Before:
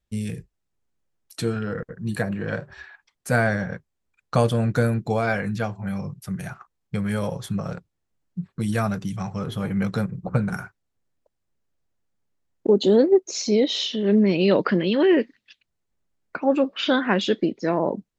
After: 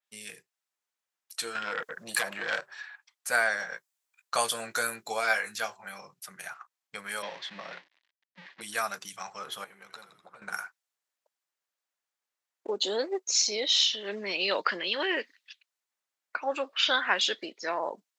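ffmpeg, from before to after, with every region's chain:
-filter_complex "[0:a]asettb=1/sr,asplit=3[a][b][c];[a]atrim=end=1.554[d];[b]atrim=start=1.55:end=2.61,asetpts=PTS-STARTPTS,afade=t=in:d=0.004:c=qsin,afade=t=out:st=1.056:d=0.004:c=qsin,bandreject=f=430:w=8.2,acompressor=threshold=-29dB:ratio=2.5:attack=3.2:release=140:knee=1:detection=peak,aeval=exprs='0.133*sin(PI/2*2.24*val(0)/0.133)':c=same[e];[c]atrim=start=2.606[f];[d][e]acrossfade=d=0.004:c1=hsin:c2=qsin[g];[g][f]acrossfade=d=0.004:c1=qsin:c2=hsin,asettb=1/sr,asplit=3[h][i][j];[h]atrim=end=3.604[k];[i]atrim=start=3.6:end=5.75,asetpts=PTS-STARTPTS,afade=t=in:d=0.004:c=qsin,afade=t=out:st=2.146:d=0.004:c=qsin,highshelf=f=6.5k:g=6.5,asplit=2[l][m];[m]adelay=18,volume=-9dB[n];[l][n]amix=inputs=2:normalize=0,atrim=end_sample=94815[o];[j]atrim=start=5.746[p];[k][o]acrossfade=d=0.004:c1=hsin:c2=qsin[q];[q][p]acrossfade=d=0.004:c1=qsin:c2=hsin,asettb=1/sr,asplit=3[r][s][t];[r]atrim=end=7.224[u];[s]atrim=start=7.22:end=8.61,asetpts=PTS-STARTPTS,afade=t=in:d=0.004:c=qsin,afade=t=out:st=1.386:d=0.004:c=qsin,aeval=exprs='val(0)+0.5*0.0224*sgn(val(0))':c=same,agate=range=-33dB:threshold=-31dB:ratio=3:release=100:detection=peak,highpass=180,equalizer=f=190:t=q:w=4:g=5,equalizer=f=300:t=q:w=4:g=4,equalizer=f=460:t=q:w=4:g=-6,equalizer=f=790:t=q:w=4:g=-3,equalizer=f=1.3k:t=q:w=4:g=-9,equalizer=f=1.9k:t=q:w=4:g=7,lowpass=f=4.1k:w=0.5412,lowpass=f=4.1k:w=1.3066[v];[t]atrim=start=8.606[w];[u][v]acrossfade=d=0.004:c1=hsin:c2=qsin[x];[x][w]acrossfade=d=0.004:c1=qsin:c2=hsin,asettb=1/sr,asplit=3[y][z][aa];[y]atrim=end=9.644[ab];[z]atrim=start=9.64:end=10.42,asetpts=PTS-STARTPTS,afade=t=in:d=0.004:c=qsin,afade=t=out:st=0.776:d=0.004:c=qsin,acompressor=threshold=-31dB:ratio=5:attack=3.2:release=140:knee=1:detection=peak,aeval=exprs='(tanh(11.2*val(0)+0.75)-tanh(0.75))/11.2':c=same,asplit=7[ac][ad][ae][af][ag][ah][ai];[ad]adelay=83,afreqshift=-71,volume=-9dB[aj];[ae]adelay=166,afreqshift=-142,volume=-14.2dB[ak];[af]adelay=249,afreqshift=-213,volume=-19.4dB[al];[ag]adelay=332,afreqshift=-284,volume=-24.6dB[am];[ah]adelay=415,afreqshift=-355,volume=-29.8dB[an];[ai]adelay=498,afreqshift=-426,volume=-35dB[ao];[ac][aj][ak][al][am][an][ao]amix=inputs=7:normalize=0,atrim=end_sample=34398[ap];[aa]atrim=start=10.416[aq];[ab][ap]acrossfade=d=0.004:c1=hsin:c2=qsin[ar];[ar][aq]acrossfade=d=0.004:c1=qsin:c2=hsin,highpass=970,adynamicequalizer=threshold=0.00794:dfrequency=3800:dqfactor=0.7:tfrequency=3800:tqfactor=0.7:attack=5:release=100:ratio=0.375:range=3:mode=boostabove:tftype=highshelf"

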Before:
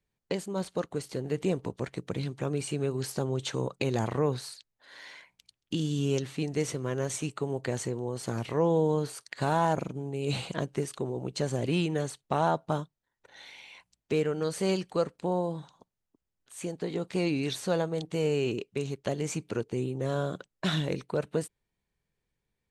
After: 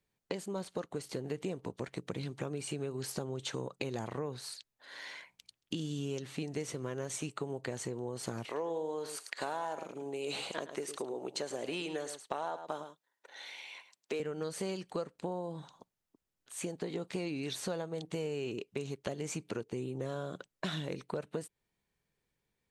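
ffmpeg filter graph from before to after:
-filter_complex "[0:a]asettb=1/sr,asplit=3[a][b][c];[a]atrim=end=8.454[d];[b]atrim=start=8.45:end=14.2,asetpts=PTS-STARTPTS,afade=t=in:d=0.004:c=qsin,afade=t=out:st=5.746:d=0.004:c=qsin,highpass=370,aecho=1:1:107:0.237,atrim=end_sample=253575[e];[c]atrim=start=14.196[f];[d][e]acrossfade=d=0.004:c1=hsin:c2=qsin[g];[g][f]acrossfade=d=0.004:c1=qsin:c2=hsin,lowshelf=f=100:g=-8,acompressor=threshold=-36dB:ratio=5,volume=1.5dB"

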